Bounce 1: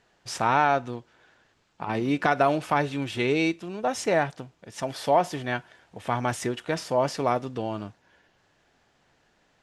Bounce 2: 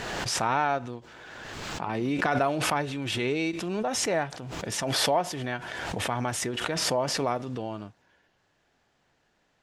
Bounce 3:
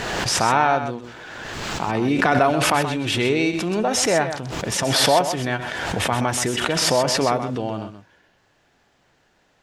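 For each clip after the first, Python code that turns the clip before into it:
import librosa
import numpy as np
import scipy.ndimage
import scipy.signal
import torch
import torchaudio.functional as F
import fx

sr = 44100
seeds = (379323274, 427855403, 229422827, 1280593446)

y1 = fx.pre_swell(x, sr, db_per_s=23.0)
y1 = F.gain(torch.from_numpy(y1), -4.5).numpy()
y2 = y1 + 10.0 ** (-9.5 / 20.0) * np.pad(y1, (int(128 * sr / 1000.0), 0))[:len(y1)]
y2 = F.gain(torch.from_numpy(y2), 7.5).numpy()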